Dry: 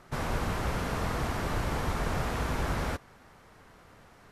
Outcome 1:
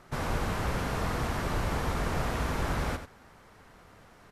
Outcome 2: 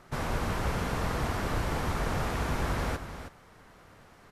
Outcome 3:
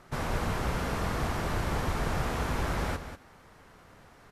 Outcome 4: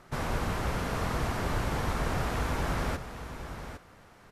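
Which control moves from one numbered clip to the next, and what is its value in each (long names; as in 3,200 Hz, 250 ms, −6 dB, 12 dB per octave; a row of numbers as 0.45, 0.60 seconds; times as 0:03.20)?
single-tap delay, delay time: 90, 319, 191, 808 milliseconds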